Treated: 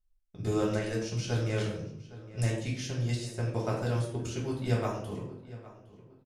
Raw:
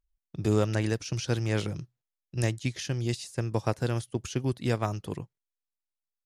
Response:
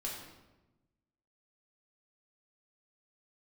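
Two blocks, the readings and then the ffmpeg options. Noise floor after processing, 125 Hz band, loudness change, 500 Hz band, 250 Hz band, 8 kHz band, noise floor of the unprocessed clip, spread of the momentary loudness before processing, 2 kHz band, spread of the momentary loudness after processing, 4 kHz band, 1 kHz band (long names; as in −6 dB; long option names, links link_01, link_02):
−66 dBFS, −1.5 dB, −2.0 dB, −1.5 dB, −2.5 dB, −3.0 dB, below −85 dBFS, 12 LU, −2.5 dB, 13 LU, −3.0 dB, −2.0 dB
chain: -filter_complex "[0:a]asplit=2[link_01][link_02];[link_02]adelay=811,lowpass=frequency=3500:poles=1,volume=-17.5dB,asplit=2[link_03][link_04];[link_04]adelay=811,lowpass=frequency=3500:poles=1,volume=0.37,asplit=2[link_05][link_06];[link_06]adelay=811,lowpass=frequency=3500:poles=1,volume=0.37[link_07];[link_01][link_03][link_05][link_07]amix=inputs=4:normalize=0[link_08];[1:a]atrim=start_sample=2205,asetrate=79380,aresample=44100[link_09];[link_08][link_09]afir=irnorm=-1:irlink=0,volume=1.5dB"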